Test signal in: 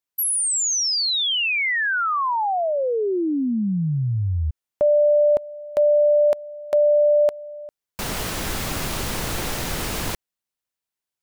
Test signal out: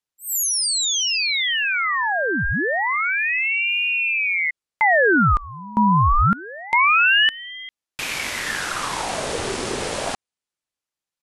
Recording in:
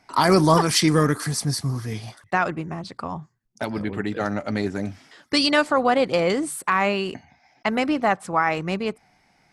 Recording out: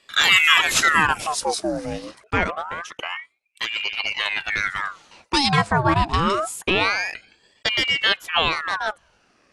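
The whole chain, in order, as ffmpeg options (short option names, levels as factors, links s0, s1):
-af "aresample=22050,aresample=44100,aeval=exprs='val(0)*sin(2*PI*1500*n/s+1500*0.75/0.26*sin(2*PI*0.26*n/s))':c=same,volume=1.5"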